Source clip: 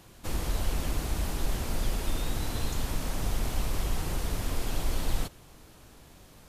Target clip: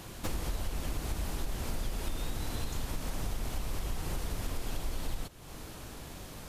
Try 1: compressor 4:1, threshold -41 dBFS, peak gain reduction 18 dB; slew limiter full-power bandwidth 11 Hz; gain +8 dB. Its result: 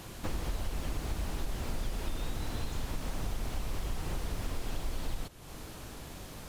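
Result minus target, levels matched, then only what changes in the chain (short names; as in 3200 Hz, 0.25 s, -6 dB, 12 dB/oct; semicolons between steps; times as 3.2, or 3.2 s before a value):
slew limiter: distortion +20 dB
change: slew limiter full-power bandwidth 41 Hz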